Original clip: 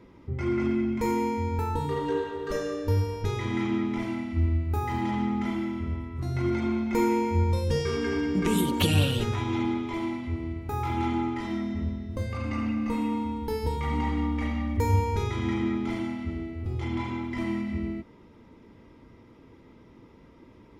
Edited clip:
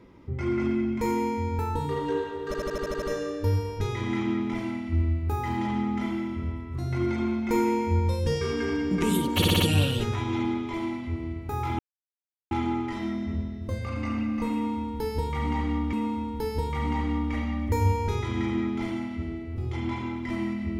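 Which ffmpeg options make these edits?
-filter_complex "[0:a]asplit=14[s0][s1][s2][s3][s4][s5][s6][s7][s8][s9][s10][s11][s12][s13];[s0]atrim=end=2.542[s14];[s1]atrim=start=2.458:end=2.542[s15];[s2]atrim=start=2.458:end=2.542[s16];[s3]atrim=start=2.458:end=2.542[s17];[s4]atrim=start=2.458:end=2.542[s18];[s5]atrim=start=2.458:end=2.542[s19];[s6]atrim=start=2.458:end=2.542[s20];[s7]atrim=start=2.458:end=8.862[s21];[s8]atrim=start=8.798:end=8.862[s22];[s9]atrim=start=8.798:end=8.862[s23];[s10]atrim=start=8.798:end=8.862[s24];[s11]atrim=start=8.798:end=10.99,asetpts=PTS-STARTPTS,afade=t=out:st=2.188:d=0.004:c=hsin,apad=pad_dur=0.72[s25];[s12]atrim=start=10.99:end=14.412,asetpts=PTS-STARTPTS,afade=t=in:d=0.004:c=hsin[s26];[s13]atrim=start=13.008[s27];[s14][s15]acrossfade=d=0.004:c1=hsin:c2=hsin[s28];[s28][s16]acrossfade=d=0.004:c1=hsin:c2=hsin[s29];[s29][s17]acrossfade=d=0.004:c1=hsin:c2=hsin[s30];[s30][s18]acrossfade=d=0.004:c1=hsin:c2=hsin[s31];[s31][s19]acrossfade=d=0.004:c1=hsin:c2=hsin[s32];[s32][s20]acrossfade=d=0.004:c1=hsin:c2=hsin[s33];[s33][s21]acrossfade=d=0.004:c1=hsin:c2=hsin[s34];[s34][s22]acrossfade=d=0.004:c1=hsin:c2=hsin[s35];[s35][s23]acrossfade=d=0.004:c1=hsin:c2=hsin[s36];[s36][s24]acrossfade=d=0.004:c1=hsin:c2=hsin[s37];[s25][s26]concat=n=2:v=0:a=1[s38];[s37][s38]acrossfade=d=0.004:c1=hsin:c2=hsin[s39];[s39][s27]acrossfade=d=0.004:c1=hsin:c2=hsin"

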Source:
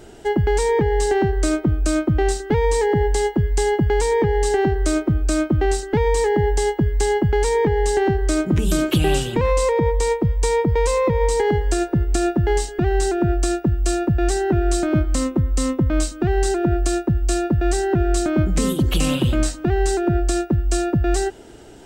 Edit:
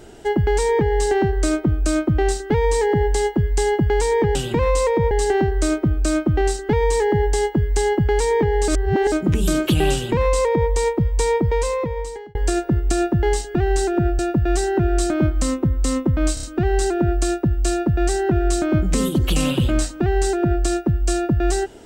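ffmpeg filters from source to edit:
-filter_complex "[0:a]asplit=10[s0][s1][s2][s3][s4][s5][s6][s7][s8][s9];[s0]atrim=end=4.352[s10];[s1]atrim=start=9.168:end=9.932[s11];[s2]atrim=start=4.348:end=7.922[s12];[s3]atrim=start=7.918:end=8.362,asetpts=PTS-STARTPTS,areverse[s13];[s4]atrim=start=8.358:end=11.59,asetpts=PTS-STARTPTS,afade=t=out:st=2.302:d=0.93[s14];[s5]atrim=start=11.59:end=13.432,asetpts=PTS-STARTPTS,afade=t=in:d=0.004:c=hsin[s15];[s6]atrim=start=13.918:end=16.102[s16];[s7]atrim=start=16.068:end=16.102[s17];[s8]atrim=start=16.068:end=16.102[s18];[s9]atrim=start=16.068[s19];[s10][s11]acrossfade=d=0.004:c1=hsin:c2=hsin[s20];[s20][s12]acrossfade=d=0.004:c1=hsin:c2=hsin[s21];[s21][s13]acrossfade=d=0.004:c1=hsin:c2=hsin[s22];[s14][s15]concat=n=2:v=0:a=1[s23];[s22][s23]acrossfade=d=0.004:c1=hsin:c2=hsin[s24];[s24][s16]acrossfade=d=0.004:c1=hsin:c2=hsin[s25];[s25][s17]acrossfade=d=0.004:c1=hsin:c2=hsin[s26];[s26][s18]acrossfade=d=0.004:c1=hsin:c2=hsin[s27];[s27][s19]acrossfade=d=0.004:c1=hsin:c2=hsin"

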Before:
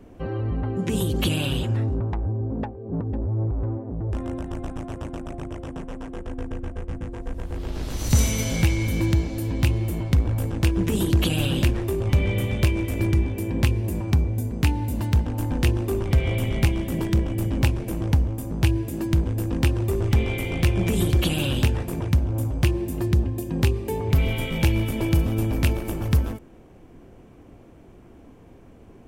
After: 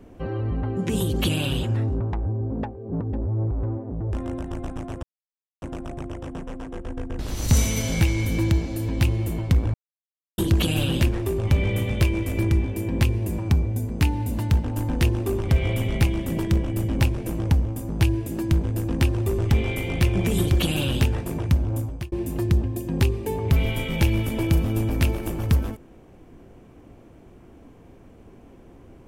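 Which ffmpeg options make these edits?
-filter_complex "[0:a]asplit=6[s0][s1][s2][s3][s4][s5];[s0]atrim=end=5.03,asetpts=PTS-STARTPTS,afade=t=out:st=5.026:d=0.004:c=hsin,apad=pad_dur=0.59[s6];[s1]atrim=start=5.03:end=6.602,asetpts=PTS-STARTPTS,afade=t=in:d=0.004:c=hsin[s7];[s2]atrim=start=7.808:end=10.36,asetpts=PTS-STARTPTS,afade=t=out:st=2.548:d=0.004:c=hsin[s8];[s3]atrim=start=10.36:end=11,asetpts=PTS-STARTPTS,volume=0[s9];[s4]atrim=start=11:end=22.74,asetpts=PTS-STARTPTS,afade=t=in:d=0.004:c=hsin,afade=t=out:st=11.36:d=0.38[s10];[s5]atrim=start=22.74,asetpts=PTS-STARTPTS,afade=t=in:d=0.004:c=hsin[s11];[s6][s7]concat=n=2:v=0:a=1[s12];[s8][s9][s10][s11]concat=n=4:v=0:a=1[s13];[s12][s13]acrossfade=d=0.004:c1=hsin:c2=hsin"

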